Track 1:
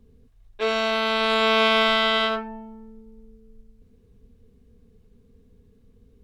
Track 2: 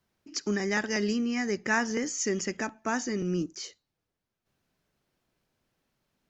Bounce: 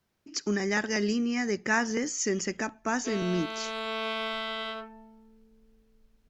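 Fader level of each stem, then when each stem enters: -13.5 dB, +0.5 dB; 2.45 s, 0.00 s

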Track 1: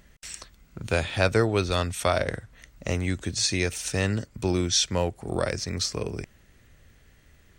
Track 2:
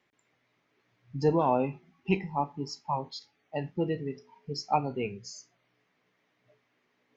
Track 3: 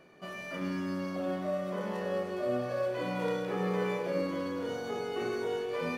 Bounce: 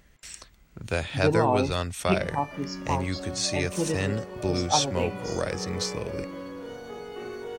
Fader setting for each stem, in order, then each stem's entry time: -3.0 dB, +1.5 dB, -3.5 dB; 0.00 s, 0.00 s, 2.00 s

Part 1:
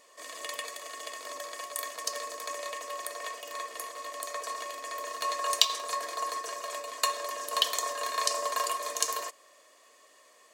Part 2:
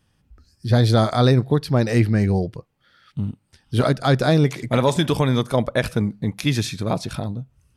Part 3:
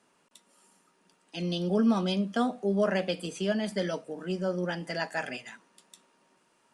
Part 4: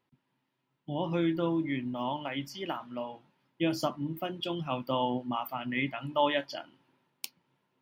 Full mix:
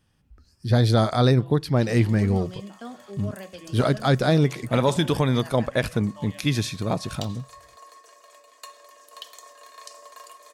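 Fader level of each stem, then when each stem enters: -14.5 dB, -2.5 dB, -11.5 dB, -17.5 dB; 1.60 s, 0.00 s, 0.45 s, 0.00 s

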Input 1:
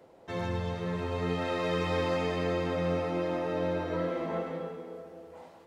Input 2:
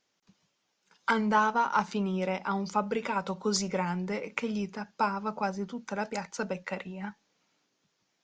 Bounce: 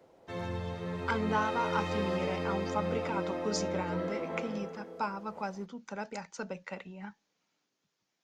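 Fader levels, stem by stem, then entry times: -4.0 dB, -6.0 dB; 0.00 s, 0.00 s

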